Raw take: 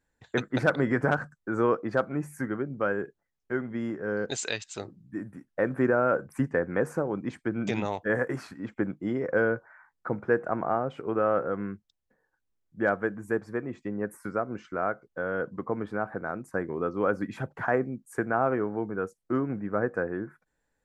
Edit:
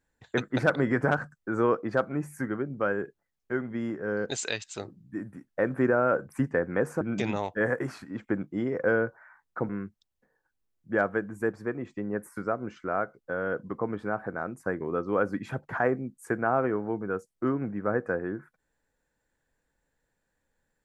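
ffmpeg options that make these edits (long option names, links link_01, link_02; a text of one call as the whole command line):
ffmpeg -i in.wav -filter_complex "[0:a]asplit=3[link_01][link_02][link_03];[link_01]atrim=end=7.012[link_04];[link_02]atrim=start=7.498:end=10.182[link_05];[link_03]atrim=start=11.568[link_06];[link_04][link_05]acrossfade=duration=0.004:curve1=hsin:curve2=hsin[link_07];[link_07][link_06]acrossfade=duration=0.004:curve1=hsin:curve2=hsin" out.wav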